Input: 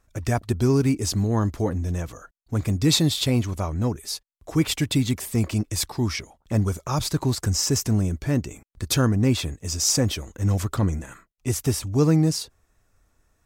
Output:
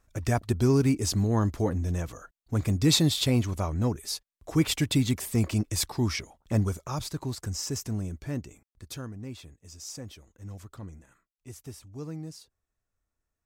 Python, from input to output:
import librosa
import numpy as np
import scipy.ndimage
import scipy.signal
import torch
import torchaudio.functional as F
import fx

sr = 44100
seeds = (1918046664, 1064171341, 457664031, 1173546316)

y = fx.gain(x, sr, db=fx.line((6.54, -2.5), (7.12, -10.0), (8.38, -10.0), (9.11, -19.5)))